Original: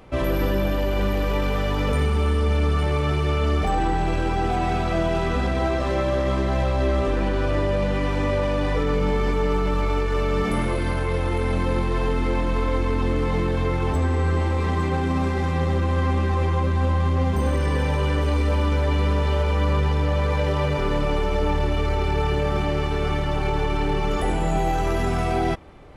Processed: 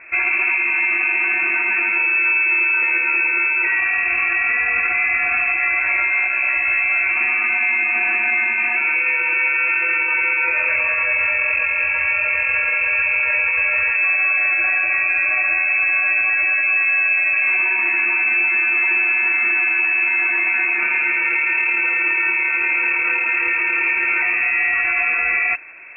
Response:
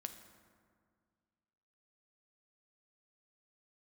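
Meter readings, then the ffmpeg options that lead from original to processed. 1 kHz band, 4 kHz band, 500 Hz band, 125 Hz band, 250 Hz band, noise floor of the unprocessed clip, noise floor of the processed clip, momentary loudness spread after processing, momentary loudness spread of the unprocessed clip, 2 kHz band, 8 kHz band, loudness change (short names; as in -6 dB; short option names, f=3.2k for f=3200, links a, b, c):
-2.5 dB, under -20 dB, -13.0 dB, under -30 dB, under -10 dB, -23 dBFS, -20 dBFS, 2 LU, 2 LU, +19.5 dB, under -35 dB, +7.5 dB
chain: -af "highpass=56,lowpass=f=2.3k:t=q:w=0.5098,lowpass=f=2.3k:t=q:w=0.6013,lowpass=f=2.3k:t=q:w=0.9,lowpass=f=2.3k:t=q:w=2.563,afreqshift=-2700,alimiter=level_in=16.5dB:limit=-1dB:release=50:level=0:latency=1,volume=-9dB"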